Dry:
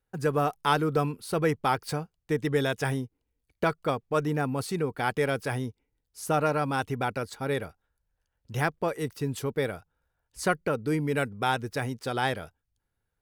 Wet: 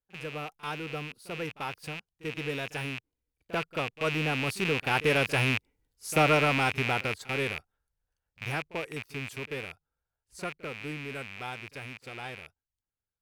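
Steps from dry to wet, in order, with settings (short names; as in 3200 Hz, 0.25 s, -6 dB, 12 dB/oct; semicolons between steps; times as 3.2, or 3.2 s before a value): rattling part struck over -42 dBFS, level -17 dBFS; Doppler pass-by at 5.81, 9 m/s, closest 8.5 m; pre-echo 40 ms -18 dB; gain +2.5 dB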